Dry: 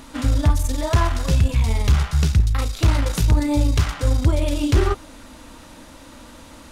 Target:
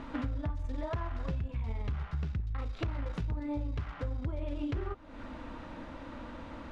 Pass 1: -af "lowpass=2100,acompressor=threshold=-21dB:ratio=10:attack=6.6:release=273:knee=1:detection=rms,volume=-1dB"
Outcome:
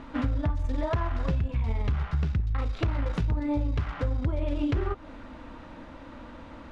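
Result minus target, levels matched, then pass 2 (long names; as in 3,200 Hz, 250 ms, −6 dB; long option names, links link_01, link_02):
downward compressor: peak gain reduction −7.5 dB
-af "lowpass=2100,acompressor=threshold=-29.5dB:ratio=10:attack=6.6:release=273:knee=1:detection=rms,volume=-1dB"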